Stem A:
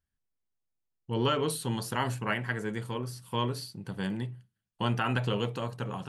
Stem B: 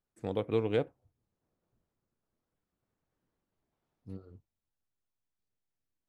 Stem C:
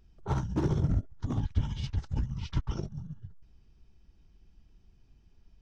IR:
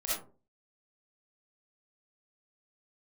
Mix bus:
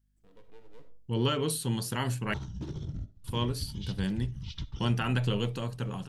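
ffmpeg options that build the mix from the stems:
-filter_complex "[0:a]volume=3dB,asplit=3[link_01][link_02][link_03];[link_01]atrim=end=2.34,asetpts=PTS-STARTPTS,afade=type=out:start_time=2.336:duration=0.004:curve=hsin[link_04];[link_02]atrim=start=2.34:end=3.24,asetpts=PTS-STARTPTS,volume=0[link_05];[link_03]atrim=start=3.24,asetpts=PTS-STARTPTS,afade=type=in:duration=0.004:curve=hsin[link_06];[link_04][link_05][link_06]concat=n=3:v=0:a=1[link_07];[1:a]aeval=exprs='max(val(0),0)':channel_layout=same,aeval=exprs='val(0)+0.00158*(sin(2*PI*50*n/s)+sin(2*PI*2*50*n/s)/2+sin(2*PI*3*50*n/s)/3+sin(2*PI*4*50*n/s)/4+sin(2*PI*5*50*n/s)/5)':channel_layout=same,volume=-17dB,asplit=2[link_08][link_09];[link_09]volume=-11.5dB[link_10];[2:a]equalizer=frequency=3700:width=1.5:gain=9.5,acompressor=threshold=-33dB:ratio=6,adelay=2050,volume=-1dB,asplit=2[link_11][link_12];[link_12]volume=-21.5dB[link_13];[3:a]atrim=start_sample=2205[link_14];[link_10][link_13]amix=inputs=2:normalize=0[link_15];[link_15][link_14]afir=irnorm=-1:irlink=0[link_16];[link_07][link_08][link_11][link_16]amix=inputs=4:normalize=0,equalizer=frequency=930:width_type=o:width=2.5:gain=-8"

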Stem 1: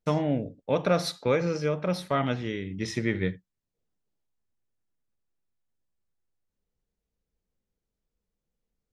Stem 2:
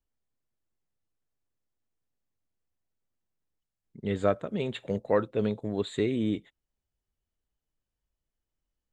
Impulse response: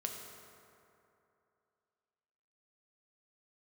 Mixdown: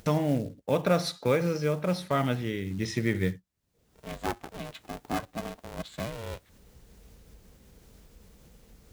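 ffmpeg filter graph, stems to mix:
-filter_complex "[0:a]acompressor=mode=upward:threshold=-28dB:ratio=2.5,volume=-1dB[link_01];[1:a]highpass=290,aeval=exprs='val(0)*sgn(sin(2*PI*230*n/s))':channel_layout=same,volume=-6.5dB,asplit=2[link_02][link_03];[link_03]apad=whole_len=393482[link_04];[link_01][link_04]sidechaincompress=threshold=-36dB:ratio=3:attack=6.2:release=720[link_05];[link_05][link_02]amix=inputs=2:normalize=0,highpass=43,lowshelf=frequency=100:gain=6.5,acrusher=bits=6:mode=log:mix=0:aa=0.000001"

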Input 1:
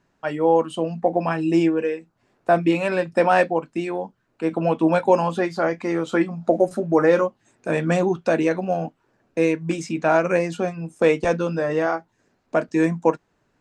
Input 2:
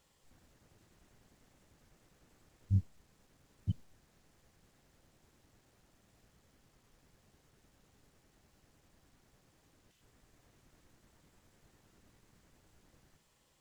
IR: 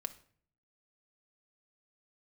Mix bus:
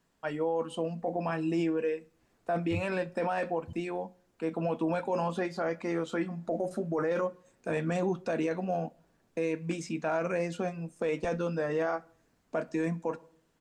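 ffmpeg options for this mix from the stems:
-filter_complex "[0:a]volume=-11dB,asplit=2[link_01][link_02];[link_02]volume=-4dB[link_03];[1:a]asplit=2[link_04][link_05];[link_05]adelay=8.4,afreqshift=-0.63[link_06];[link_04][link_06]amix=inputs=2:normalize=1,volume=-4dB[link_07];[2:a]atrim=start_sample=2205[link_08];[link_03][link_08]afir=irnorm=-1:irlink=0[link_09];[link_01][link_07][link_09]amix=inputs=3:normalize=0,alimiter=limit=-22dB:level=0:latency=1:release=10"

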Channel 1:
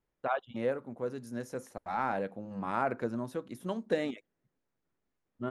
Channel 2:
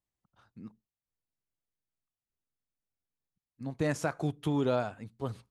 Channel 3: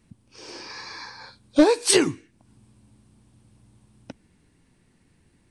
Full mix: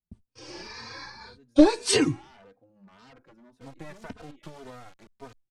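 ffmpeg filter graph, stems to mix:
ffmpeg -i stem1.wav -i stem2.wav -i stem3.wav -filter_complex "[0:a]aeval=exprs='0.0316*(abs(mod(val(0)/0.0316+3,4)-2)-1)':channel_layout=same,adelay=250,volume=-14.5dB[link_01];[1:a]equalizer=frequency=1100:width=0.37:gain=10,acompressor=threshold=-29dB:ratio=12,acrusher=bits=4:dc=4:mix=0:aa=0.000001,volume=-5dB[link_02];[2:a]agate=range=-36dB:threshold=-49dB:ratio=16:detection=peak,lowshelf=frequency=120:gain=12,volume=0dB[link_03];[link_01][link_02][link_03]amix=inputs=3:normalize=0,lowpass=8200,asplit=2[link_04][link_05];[link_05]adelay=3.1,afreqshift=1.8[link_06];[link_04][link_06]amix=inputs=2:normalize=1" out.wav

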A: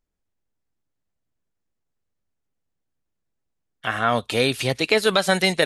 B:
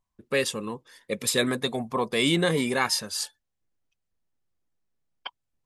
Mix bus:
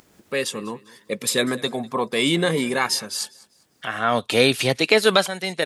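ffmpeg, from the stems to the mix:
ffmpeg -i stem1.wav -i stem2.wav -filter_complex "[0:a]acompressor=mode=upward:threshold=-26dB:ratio=2.5,volume=0dB[link_01];[1:a]volume=-3dB,asplit=3[link_02][link_03][link_04];[link_03]volume=-22.5dB[link_05];[link_04]apad=whole_len=249551[link_06];[link_01][link_06]sidechaincompress=threshold=-48dB:ratio=12:attack=33:release=881[link_07];[link_05]aecho=0:1:198|396|594|792:1|0.31|0.0961|0.0298[link_08];[link_07][link_02][link_08]amix=inputs=3:normalize=0,highpass=130,dynaudnorm=framelen=110:gausssize=7:maxgain=6dB" out.wav

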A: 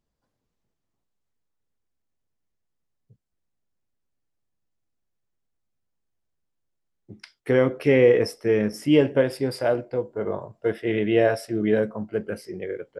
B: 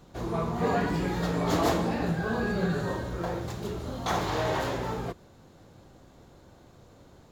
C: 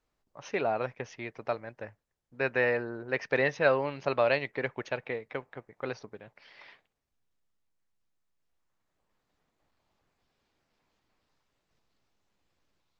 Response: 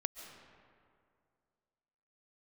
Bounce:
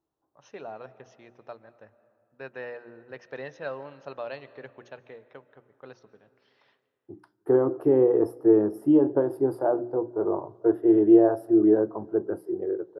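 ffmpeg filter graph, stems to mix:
-filter_complex "[0:a]alimiter=limit=-11dB:level=0:latency=1:release=238,firequalizer=gain_entry='entry(130,0);entry(220,-6);entry(330,15);entry(490,0);entry(800,9);entry(1200,3);entry(2200,-20);entry(3500,-20);entry(6300,-26);entry(11000,-5)':delay=0.05:min_phase=1,volume=-5dB,asplit=2[link_01][link_02];[link_02]volume=-19dB[link_03];[2:a]bandreject=frequency=4700:width=12,volume=-13dB,asplit=2[link_04][link_05];[link_05]volume=-6.5dB[link_06];[3:a]atrim=start_sample=2205[link_07];[link_03][link_06]amix=inputs=2:normalize=0[link_08];[link_08][link_07]afir=irnorm=-1:irlink=0[link_09];[link_01][link_04][link_09]amix=inputs=3:normalize=0,highpass=86,equalizer=frequency=2200:width=3.6:gain=-9.5,bandreject=frequency=60:width_type=h:width=6,bandreject=frequency=120:width_type=h:width=6,bandreject=frequency=180:width_type=h:width=6,bandreject=frequency=240:width_type=h:width=6,bandreject=frequency=300:width_type=h:width=6,bandreject=frequency=360:width_type=h:width=6"

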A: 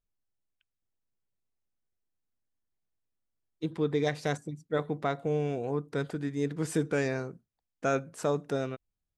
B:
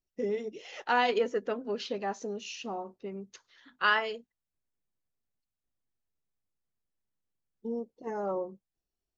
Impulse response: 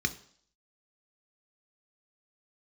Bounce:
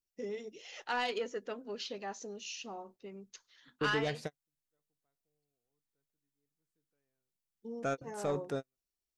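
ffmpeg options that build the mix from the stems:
-filter_complex "[0:a]volume=-4.5dB[link_01];[1:a]highshelf=frequency=2600:gain=10.5,volume=-8.5dB,asplit=2[link_02][link_03];[link_03]apad=whole_len=404594[link_04];[link_01][link_04]sidechaingate=range=-53dB:threshold=-57dB:ratio=16:detection=peak[link_05];[link_05][link_02]amix=inputs=2:normalize=0,asoftclip=type=tanh:threshold=-24dB"

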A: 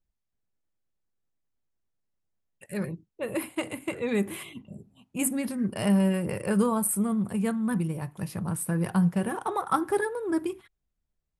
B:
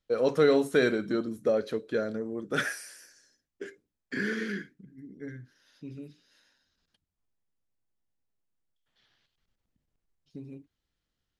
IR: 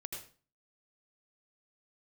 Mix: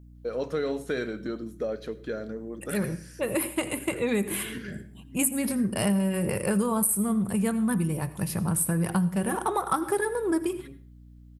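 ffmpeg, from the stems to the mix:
-filter_complex "[0:a]highshelf=frequency=7600:gain=9.5,volume=2.5dB,asplit=3[link_01][link_02][link_03];[link_02]volume=-8.5dB[link_04];[1:a]acompressor=threshold=-35dB:ratio=1.5,adelay=150,volume=-1.5dB,asplit=2[link_05][link_06];[link_06]volume=-11.5dB[link_07];[link_03]apad=whole_len=509031[link_08];[link_05][link_08]sidechaincompress=threshold=-43dB:ratio=8:attack=16:release=172[link_09];[2:a]atrim=start_sample=2205[link_10];[link_04][link_07]amix=inputs=2:normalize=0[link_11];[link_11][link_10]afir=irnorm=-1:irlink=0[link_12];[link_01][link_09][link_12]amix=inputs=3:normalize=0,aeval=exprs='val(0)+0.00398*(sin(2*PI*60*n/s)+sin(2*PI*2*60*n/s)/2+sin(2*PI*3*60*n/s)/3+sin(2*PI*4*60*n/s)/4+sin(2*PI*5*60*n/s)/5)':channel_layout=same,acompressor=threshold=-22dB:ratio=5"

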